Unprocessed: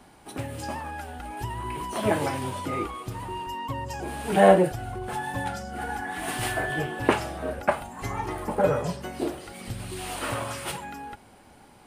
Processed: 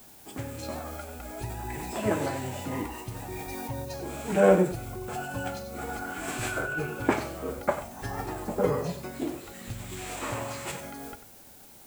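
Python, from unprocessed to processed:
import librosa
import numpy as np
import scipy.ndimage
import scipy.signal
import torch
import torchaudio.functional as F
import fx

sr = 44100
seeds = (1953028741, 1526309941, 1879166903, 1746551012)

p1 = fx.dmg_noise_colour(x, sr, seeds[0], colour='blue', level_db=-50.0)
p2 = fx.formant_shift(p1, sr, semitones=-3)
p3 = p2 + fx.echo_single(p2, sr, ms=94, db=-12.0, dry=0)
y = p3 * 10.0 ** (-3.0 / 20.0)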